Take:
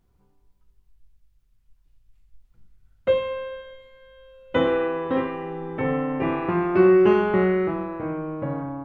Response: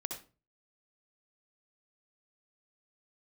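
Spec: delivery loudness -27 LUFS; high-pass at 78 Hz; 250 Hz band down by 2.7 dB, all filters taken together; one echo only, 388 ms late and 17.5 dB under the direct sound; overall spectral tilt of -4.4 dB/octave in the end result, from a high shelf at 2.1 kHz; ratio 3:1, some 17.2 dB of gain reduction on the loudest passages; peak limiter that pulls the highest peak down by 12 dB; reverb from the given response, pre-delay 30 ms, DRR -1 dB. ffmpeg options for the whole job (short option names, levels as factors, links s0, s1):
-filter_complex "[0:a]highpass=78,equalizer=f=250:t=o:g=-5,highshelf=f=2100:g=8.5,acompressor=threshold=0.0112:ratio=3,alimiter=level_in=2.99:limit=0.0631:level=0:latency=1,volume=0.335,aecho=1:1:388:0.133,asplit=2[s0][s1];[1:a]atrim=start_sample=2205,adelay=30[s2];[s1][s2]afir=irnorm=-1:irlink=0,volume=1.12[s3];[s0][s3]amix=inputs=2:normalize=0,volume=3.76"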